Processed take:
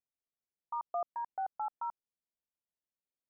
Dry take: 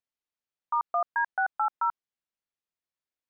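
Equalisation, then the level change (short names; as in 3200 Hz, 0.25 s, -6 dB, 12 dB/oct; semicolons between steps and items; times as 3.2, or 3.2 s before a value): running mean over 28 samples; -2.5 dB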